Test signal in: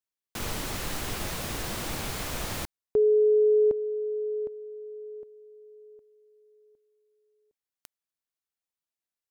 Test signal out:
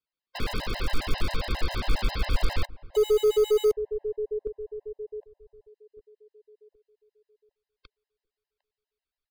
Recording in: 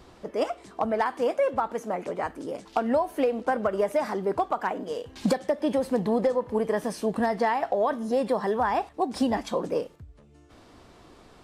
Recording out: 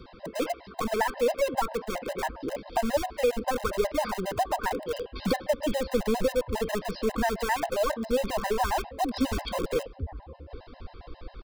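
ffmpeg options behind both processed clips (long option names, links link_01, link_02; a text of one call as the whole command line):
ffmpeg -i in.wav -filter_complex "[0:a]aresample=11025,aresample=44100,asplit=2[link_01][link_02];[link_02]adelay=754,lowpass=frequency=1100:poles=1,volume=-21.5dB,asplit=2[link_03][link_04];[link_04]adelay=754,lowpass=frequency=1100:poles=1,volume=0.51,asplit=2[link_05][link_06];[link_06]adelay=754,lowpass=frequency=1100:poles=1,volume=0.51,asplit=2[link_07][link_08];[link_08]adelay=754,lowpass=frequency=1100:poles=1,volume=0.51[link_09];[link_01][link_03][link_05][link_07][link_09]amix=inputs=5:normalize=0,asplit=2[link_10][link_11];[link_11]aeval=exprs='(mod(20*val(0)+1,2)-1)/20':channel_layout=same,volume=-7dB[link_12];[link_10][link_12]amix=inputs=2:normalize=0,asubboost=boost=9:cutoff=57,acrossover=split=640|1100[link_13][link_14][link_15];[link_14]aeval=exprs='clip(val(0),-1,0.00794)':channel_layout=same[link_16];[link_13][link_16][link_15]amix=inputs=3:normalize=0,afftfilt=real='re*gt(sin(2*PI*7.4*pts/sr)*(1-2*mod(floor(b*sr/1024/530),2)),0)':imag='im*gt(sin(2*PI*7.4*pts/sr)*(1-2*mod(floor(b*sr/1024/530),2)),0)':win_size=1024:overlap=0.75,volume=2.5dB" out.wav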